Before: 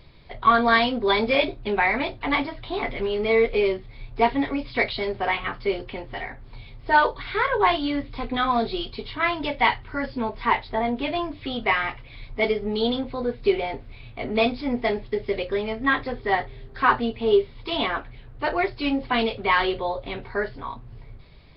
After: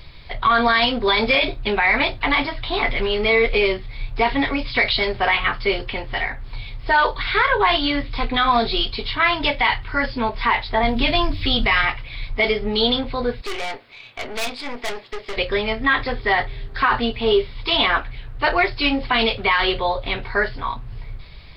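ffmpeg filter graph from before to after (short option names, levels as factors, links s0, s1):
-filter_complex "[0:a]asettb=1/sr,asplit=3[s0][s1][s2];[s0]atrim=end=10.834[s3];[s1]atrim=start=10.83:end=11.85,asetpts=PTS-STARTPTS,afade=t=in:d=0.004:c=qsin,afade=t=out:st=1.016:d=0.004:c=qsin,bass=f=250:g=10,treble=f=4000:g=10,bandreject=f=60:t=h:w=6,bandreject=f=120:t=h:w=6,bandreject=f=180:t=h:w=6,bandreject=f=240:t=h:w=6,bandreject=f=300:t=h:w=6,bandreject=f=360:t=h:w=6,bandreject=f=420:t=h:w=6[s4];[s2]atrim=start=11.846[s5];[s3][s4]acrossfade=d=0.004:c1=hsin:c2=qsin[s6];[s6][s5]acrossfade=d=0.004:c1=qsin:c2=hsin,asettb=1/sr,asplit=3[s7][s8][s9];[s7]atrim=end=13.414[s10];[s8]atrim=start=13.41:end=15.37,asetpts=PTS-STARTPTS,afade=t=in:d=0.004:c=qsin,afade=t=out:st=1.956:d=0.004:c=qsin,highpass=350,aeval=exprs='(tanh(35.5*val(0)+0.55)-tanh(0.55))/35.5':c=same[s11];[s9]atrim=start=15.366[s12];[s10][s11]acrossfade=d=0.004:c1=hsin:c2=qsin[s13];[s13][s12]acrossfade=d=0.004:c1=qsin:c2=hsin,equalizer=f=300:w=0.38:g=-10,alimiter=level_in=8.91:limit=0.891:release=50:level=0:latency=1,volume=0.447"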